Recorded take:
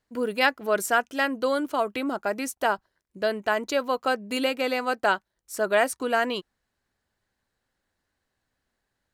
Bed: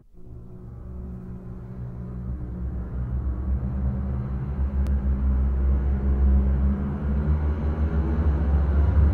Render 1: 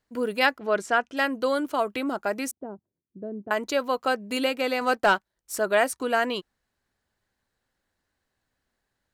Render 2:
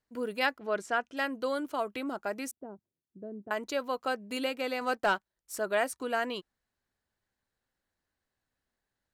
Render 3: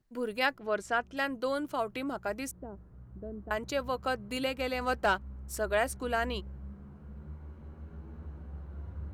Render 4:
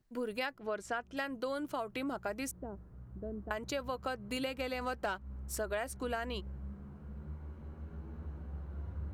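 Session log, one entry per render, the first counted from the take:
0.58–1.17 s: distance through air 93 m; 2.51–3.51 s: Butterworth band-pass 190 Hz, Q 0.75; 4.81–5.59 s: waveshaping leveller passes 1
trim -7 dB
add bed -22 dB
compression 6:1, threshold -33 dBFS, peak gain reduction 10.5 dB

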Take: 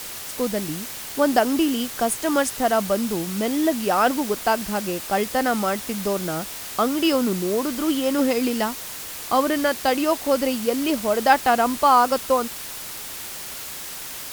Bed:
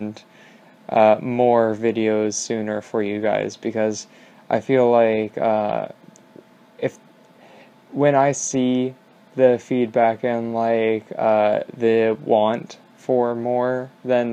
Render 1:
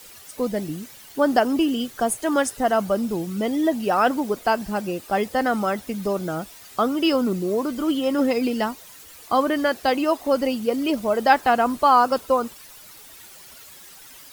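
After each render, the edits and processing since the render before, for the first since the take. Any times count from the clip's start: noise reduction 13 dB, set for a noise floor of -34 dBFS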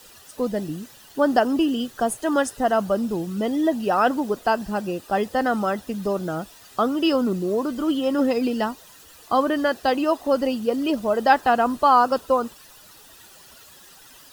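treble shelf 6.1 kHz -5.5 dB; band-stop 2.2 kHz, Q 5.8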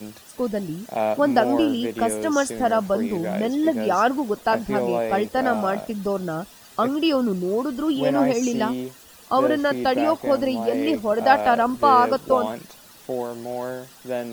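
add bed -9 dB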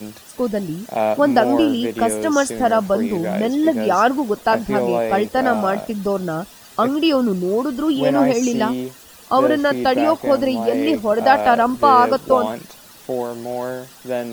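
trim +4 dB; peak limiter -2 dBFS, peak gain reduction 2.5 dB

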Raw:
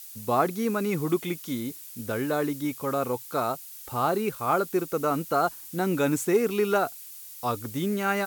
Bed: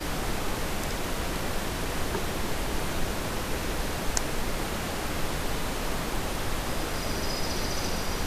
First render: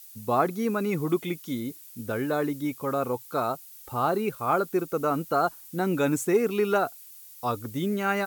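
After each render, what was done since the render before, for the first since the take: noise reduction 6 dB, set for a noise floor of -44 dBFS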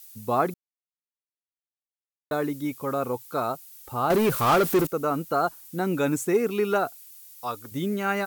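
0.54–2.31 s: mute; 4.10–4.87 s: power-law waveshaper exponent 0.5; 7.00–7.72 s: bass shelf 480 Hz -11 dB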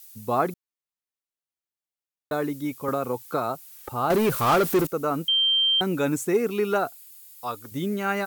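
2.88–3.89 s: three bands compressed up and down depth 100%; 5.28–5.81 s: bleep 3.15 kHz -18 dBFS; 6.88–7.62 s: band-stop 5.8 kHz, Q 8.7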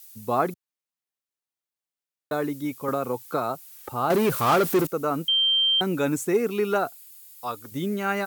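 high-pass 89 Hz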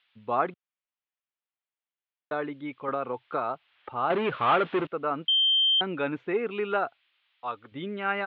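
steep low-pass 3.4 kHz 48 dB/octave; bass shelf 400 Hz -11 dB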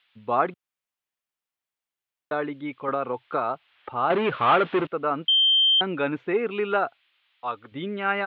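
trim +3.5 dB

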